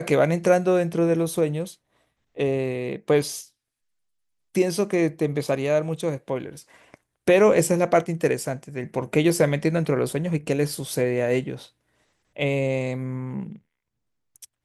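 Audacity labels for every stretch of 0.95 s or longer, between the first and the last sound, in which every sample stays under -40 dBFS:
3.450000	4.550000	silence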